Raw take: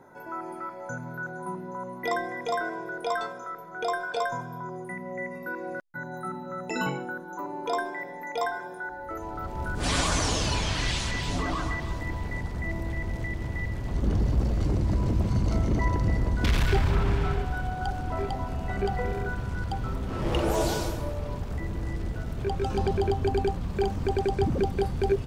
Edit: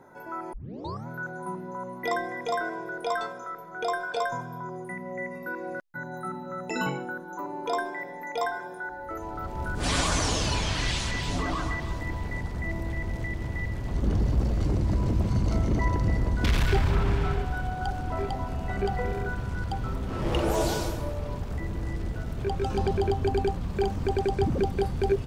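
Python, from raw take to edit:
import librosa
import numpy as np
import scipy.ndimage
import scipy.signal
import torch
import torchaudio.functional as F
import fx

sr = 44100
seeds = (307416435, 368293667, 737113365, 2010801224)

y = fx.edit(x, sr, fx.tape_start(start_s=0.53, length_s=0.54), tone=tone)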